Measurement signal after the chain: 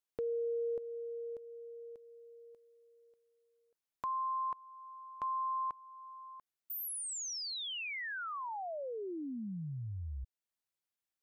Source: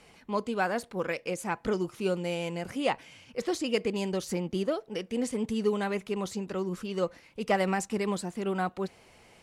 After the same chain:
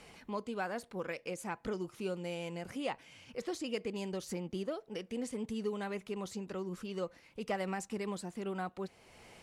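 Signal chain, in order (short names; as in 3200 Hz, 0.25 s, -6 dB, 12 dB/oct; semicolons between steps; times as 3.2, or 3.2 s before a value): compressor 1.5:1, threshold -54 dBFS; gain +1.5 dB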